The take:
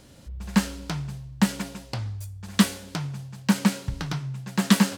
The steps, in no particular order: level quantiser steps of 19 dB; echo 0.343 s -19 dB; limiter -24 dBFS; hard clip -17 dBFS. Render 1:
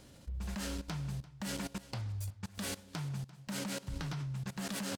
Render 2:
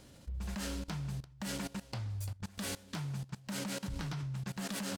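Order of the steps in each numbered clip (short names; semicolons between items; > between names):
hard clip > limiter > level quantiser > echo; echo > hard clip > limiter > level quantiser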